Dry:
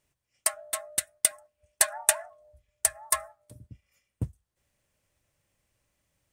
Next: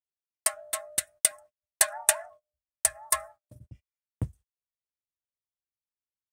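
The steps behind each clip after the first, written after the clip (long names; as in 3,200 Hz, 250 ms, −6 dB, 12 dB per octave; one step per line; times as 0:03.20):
noise gate −49 dBFS, range −34 dB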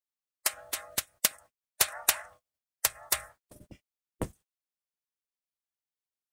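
ceiling on every frequency bin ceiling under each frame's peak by 23 dB
level −2.5 dB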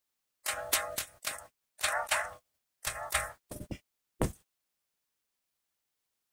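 compressor whose output falls as the input rises −32 dBFS, ratio −0.5
level +4 dB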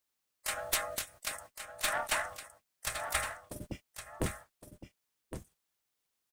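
one-sided soft clipper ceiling −26.5 dBFS
single-tap delay 1,114 ms −9.5 dB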